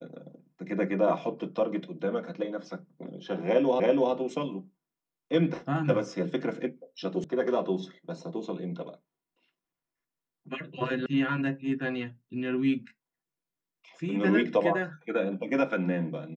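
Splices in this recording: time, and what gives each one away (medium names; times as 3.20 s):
3.80 s: repeat of the last 0.33 s
7.24 s: sound stops dead
11.06 s: sound stops dead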